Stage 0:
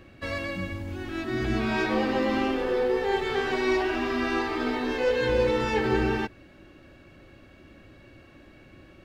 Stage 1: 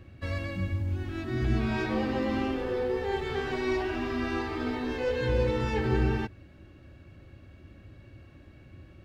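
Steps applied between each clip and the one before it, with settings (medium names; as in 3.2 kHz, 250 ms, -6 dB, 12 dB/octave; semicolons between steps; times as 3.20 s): peaking EQ 85 Hz +13.5 dB 1.9 oct; trim -6 dB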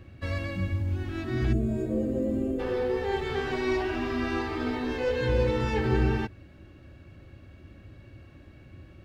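time-frequency box 1.53–2.60 s, 720–6500 Hz -21 dB; trim +1.5 dB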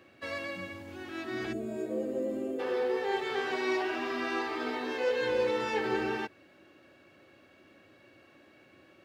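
high-pass 390 Hz 12 dB/octave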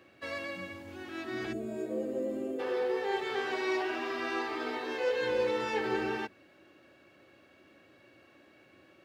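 hum notches 50/100/150/200/250 Hz; trim -1 dB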